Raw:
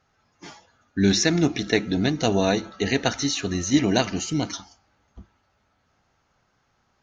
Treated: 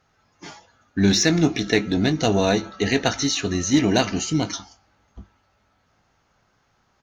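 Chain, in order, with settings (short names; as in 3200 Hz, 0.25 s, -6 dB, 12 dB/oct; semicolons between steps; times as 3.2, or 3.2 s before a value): in parallel at -9 dB: hard clip -19.5 dBFS, distortion -9 dB; on the sum: doubler 19 ms -12 dB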